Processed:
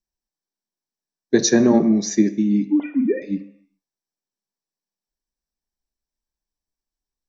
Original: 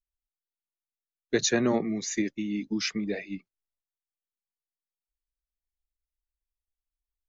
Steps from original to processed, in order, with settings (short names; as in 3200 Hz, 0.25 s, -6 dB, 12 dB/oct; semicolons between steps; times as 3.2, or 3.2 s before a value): 2.67–3.22 sine-wave speech; reverb RT60 0.75 s, pre-delay 3 ms, DRR 7 dB; gain -3 dB